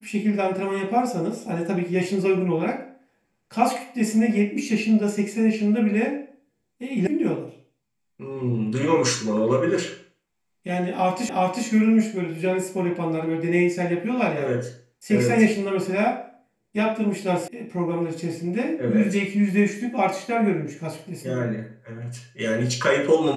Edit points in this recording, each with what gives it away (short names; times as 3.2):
7.07 sound cut off
11.29 repeat of the last 0.37 s
17.48 sound cut off